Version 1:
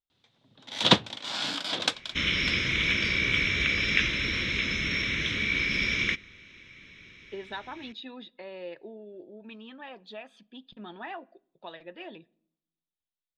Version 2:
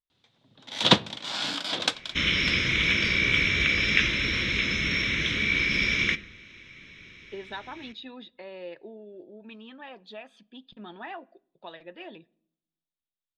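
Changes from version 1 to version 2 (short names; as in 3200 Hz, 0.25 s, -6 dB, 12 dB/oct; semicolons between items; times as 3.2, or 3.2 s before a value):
first sound: send +10.5 dB; second sound: send +10.5 dB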